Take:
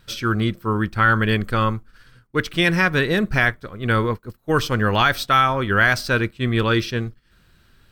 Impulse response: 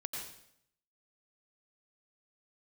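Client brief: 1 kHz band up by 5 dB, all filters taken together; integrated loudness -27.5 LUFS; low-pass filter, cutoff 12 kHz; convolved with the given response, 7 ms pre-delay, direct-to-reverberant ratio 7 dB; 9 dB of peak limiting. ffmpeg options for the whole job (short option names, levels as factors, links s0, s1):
-filter_complex "[0:a]lowpass=12000,equalizer=f=1000:t=o:g=7,alimiter=limit=0.335:level=0:latency=1,asplit=2[s0][s1];[1:a]atrim=start_sample=2205,adelay=7[s2];[s1][s2]afir=irnorm=-1:irlink=0,volume=0.447[s3];[s0][s3]amix=inputs=2:normalize=0,volume=0.447"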